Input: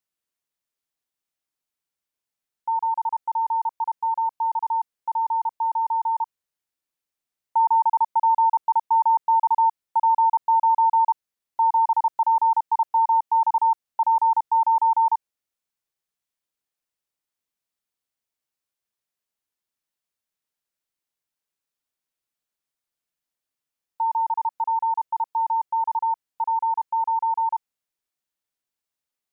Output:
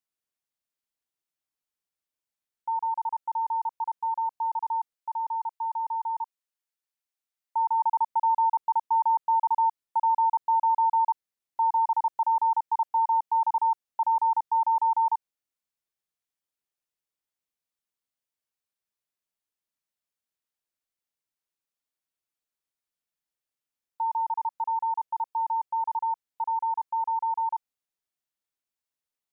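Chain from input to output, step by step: 4.94–7.8 HPF 690 Hz 6 dB/oct; gain -4.5 dB

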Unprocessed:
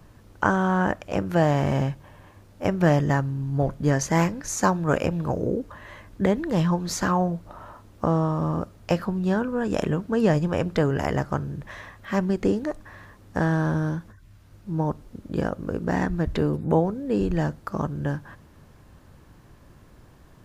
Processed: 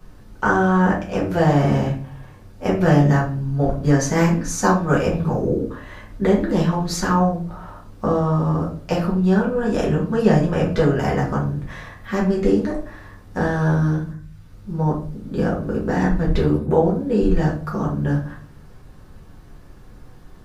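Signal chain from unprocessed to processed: shoebox room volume 33 m³, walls mixed, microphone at 1 m; gain -2.5 dB

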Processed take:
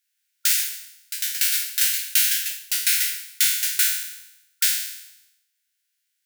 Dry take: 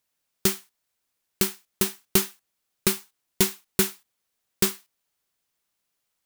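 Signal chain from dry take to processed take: spectral trails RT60 0.87 s; echoes that change speed 0.165 s, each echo +5 st, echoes 2; brick-wall FIR high-pass 1400 Hz; gain +1 dB

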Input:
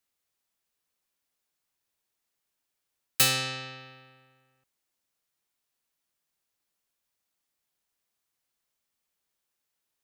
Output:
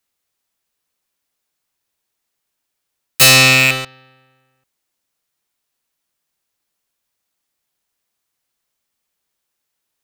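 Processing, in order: rattling part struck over -46 dBFS, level -18 dBFS; 3.21–3.85 sample leveller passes 5; gain +6.5 dB

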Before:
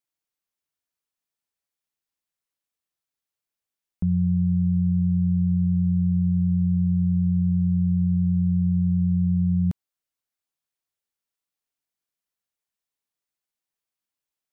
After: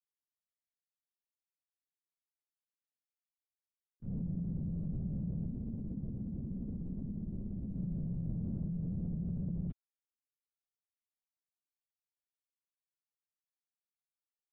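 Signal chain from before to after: gate -18 dBFS, range -24 dB; 5.47–7.78 ring modulator 53 Hz; LPC vocoder at 8 kHz whisper

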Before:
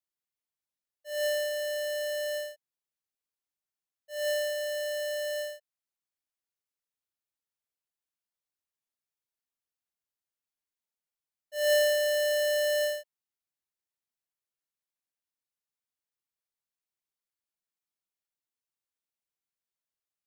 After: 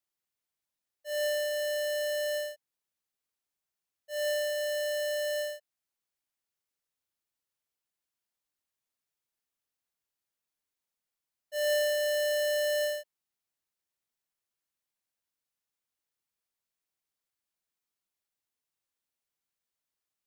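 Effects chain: compressor 2:1, threshold -36 dBFS, peak gain reduction 7 dB; gain +3 dB

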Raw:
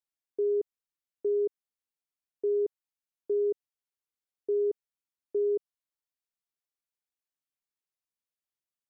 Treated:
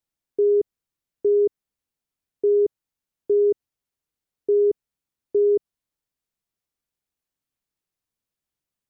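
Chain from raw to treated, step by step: low shelf 340 Hz +11 dB; gain +4.5 dB

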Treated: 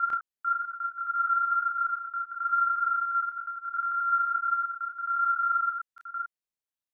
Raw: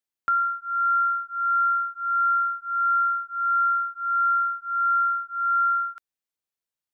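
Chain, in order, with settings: slices in reverse order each 89 ms, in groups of 5; chorus voices 4, 1 Hz, delay 29 ms, depth 3 ms; gain -2.5 dB

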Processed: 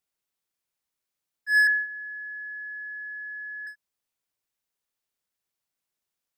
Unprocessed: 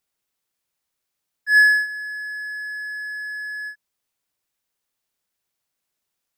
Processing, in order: 1.67–3.67 LPF 2300 Hz 24 dB/oct; gain -6 dB

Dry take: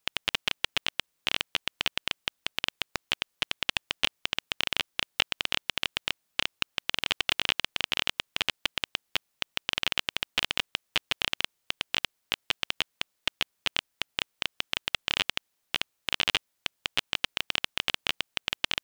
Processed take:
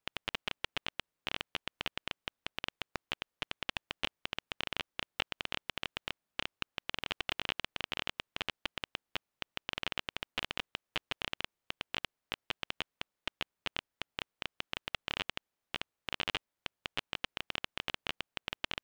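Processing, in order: high shelf 2800 Hz -11.5 dB; gain -4 dB

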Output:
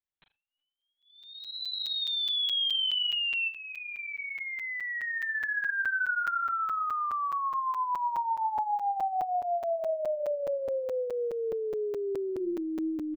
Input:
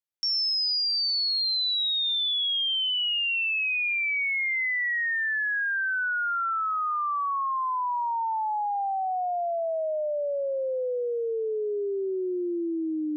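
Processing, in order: 3.48–5.71 LPF 1800 Hz 24 dB/oct; doubler 38 ms -11.5 dB; flutter echo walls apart 6.3 m, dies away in 0.24 s; LPC vocoder at 8 kHz pitch kept; crackling interface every 0.21 s, samples 256, zero, from 0.81; gain -3 dB

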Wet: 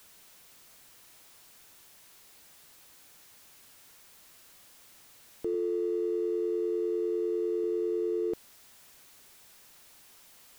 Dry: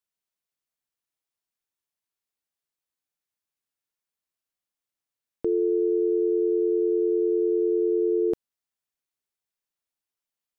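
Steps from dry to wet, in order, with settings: zero-crossing step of -41 dBFS; 5.54–7.64 HPF 140 Hz 12 dB/oct; gain -7.5 dB

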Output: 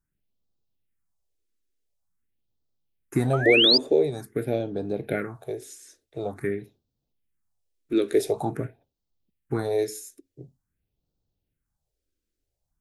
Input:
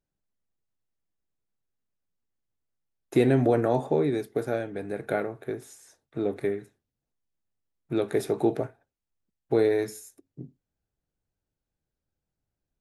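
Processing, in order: painted sound rise, 3.33–3.78, 1200–5100 Hz -23 dBFS; phaser stages 4, 0.47 Hz, lowest notch 130–2000 Hz; gain +4.5 dB

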